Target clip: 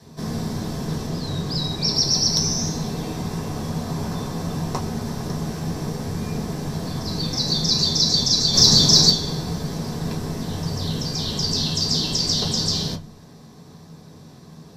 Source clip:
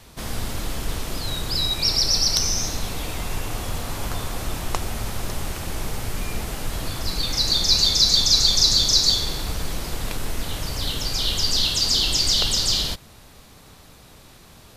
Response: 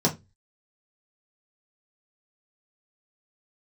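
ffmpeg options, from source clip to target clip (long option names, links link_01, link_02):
-filter_complex "[0:a]asettb=1/sr,asplit=3[link_01][link_02][link_03];[link_01]atrim=end=1.074[link_04];[link_02]atrim=start=1.07:end=1.95,asetpts=PTS-STARTPTS,afade=type=in:duration=0.004:curve=qsin,afade=type=out:start_time=0.876:duration=0.004:curve=qsin,highshelf=frequency=11000:gain=-7[link_05];[link_03]atrim=start=1.946[link_06];[link_04][link_05]acrossfade=duration=0.004:curve1=hsin:curve2=qsin[link_07];[link_07][link_06]acrossfade=duration=0.004:curve1=qsin:curve2=hsin,asplit=3[link_08][link_09][link_10];[link_08]afade=type=out:start_time=8.53:duration=0.02[link_11];[link_09]acontrast=69,afade=type=in:start_time=8.53:duration=0.02,afade=type=out:start_time=9.09:duration=0.02[link_12];[link_10]afade=type=in:start_time=9.09:duration=0.02[link_13];[link_11][link_12][link_13]amix=inputs=3:normalize=0[link_14];[1:a]atrim=start_sample=2205[link_15];[link_14][link_15]afir=irnorm=-1:irlink=0,volume=-14dB"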